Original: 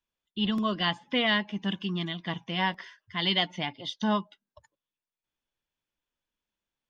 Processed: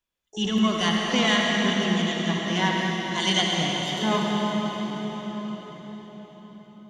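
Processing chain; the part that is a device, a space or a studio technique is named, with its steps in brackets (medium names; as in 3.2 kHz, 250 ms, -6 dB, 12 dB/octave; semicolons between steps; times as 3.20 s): 3.42–3.95 s: graphic EQ 125/500/1000/2000 Hz +5/+6/-10/-12 dB; shimmer-style reverb (harmony voices +12 st -11 dB; reverberation RT60 5.4 s, pre-delay 59 ms, DRR -2 dB); plate-style reverb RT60 5 s, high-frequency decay 0.95×, DRR 12 dB; trim +1.5 dB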